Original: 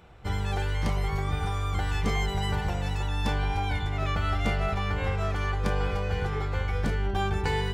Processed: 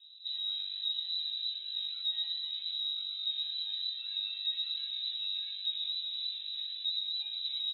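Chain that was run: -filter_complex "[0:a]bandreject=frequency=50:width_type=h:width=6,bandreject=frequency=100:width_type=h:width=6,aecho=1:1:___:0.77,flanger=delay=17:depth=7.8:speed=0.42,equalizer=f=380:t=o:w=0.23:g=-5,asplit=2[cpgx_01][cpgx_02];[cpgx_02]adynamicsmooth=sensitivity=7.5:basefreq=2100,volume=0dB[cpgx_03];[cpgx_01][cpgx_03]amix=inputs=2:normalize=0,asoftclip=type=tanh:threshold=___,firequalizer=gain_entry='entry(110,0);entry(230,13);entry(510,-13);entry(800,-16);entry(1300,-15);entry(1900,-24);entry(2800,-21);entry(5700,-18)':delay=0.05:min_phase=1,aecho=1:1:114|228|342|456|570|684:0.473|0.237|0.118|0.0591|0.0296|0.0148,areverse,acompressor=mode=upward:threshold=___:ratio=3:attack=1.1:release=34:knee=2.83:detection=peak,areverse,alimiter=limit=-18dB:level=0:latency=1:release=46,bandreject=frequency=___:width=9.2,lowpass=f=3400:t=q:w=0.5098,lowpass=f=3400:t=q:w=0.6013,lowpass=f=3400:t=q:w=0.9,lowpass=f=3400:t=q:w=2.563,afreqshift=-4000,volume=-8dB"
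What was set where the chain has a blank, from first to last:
3.9, -25dB, -45dB, 2800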